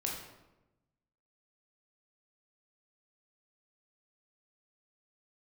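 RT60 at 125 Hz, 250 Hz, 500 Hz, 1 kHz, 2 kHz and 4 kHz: 1.4 s, 1.3 s, 1.1 s, 0.95 s, 0.80 s, 0.65 s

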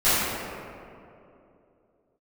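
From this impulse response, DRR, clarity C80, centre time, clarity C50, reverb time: -17.0 dB, -2.0 dB, 169 ms, -4.5 dB, 2.8 s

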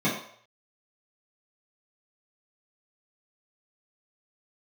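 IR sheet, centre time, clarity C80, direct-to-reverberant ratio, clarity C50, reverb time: 37 ms, 8.0 dB, -10.5 dB, 5.0 dB, 0.60 s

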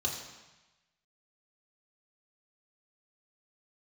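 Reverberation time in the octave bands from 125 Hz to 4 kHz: 1.2 s, 1.0 s, 1.0 s, 1.1 s, 1.2 s, 1.1 s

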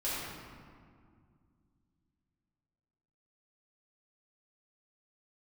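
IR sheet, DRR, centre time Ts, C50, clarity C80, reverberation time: -10.5 dB, 132 ms, -3.5 dB, -1.0 dB, 2.1 s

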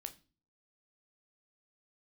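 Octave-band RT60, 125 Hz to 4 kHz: 0.60 s, 0.55 s, 0.40 s, 0.30 s, 0.30 s, 0.35 s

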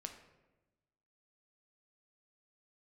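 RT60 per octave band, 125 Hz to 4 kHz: 1.5 s, 1.4 s, 1.2 s, 1.0 s, 0.90 s, 0.65 s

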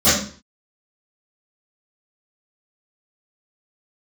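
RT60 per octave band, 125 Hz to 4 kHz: 0.50 s, 0.40 s, 0.40 s, 0.45 s, 0.45 s, 0.45 s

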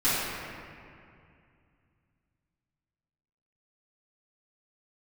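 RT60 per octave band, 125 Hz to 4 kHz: 3.6 s, 2.9 s, 2.4 s, 2.3 s, 2.3 s, 1.5 s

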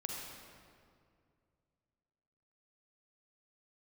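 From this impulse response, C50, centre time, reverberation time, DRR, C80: 0.0 dB, 102 ms, 2.2 s, -1.0 dB, 1.5 dB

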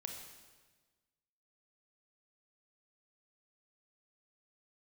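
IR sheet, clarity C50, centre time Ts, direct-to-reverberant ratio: 4.0 dB, 43 ms, 2.5 dB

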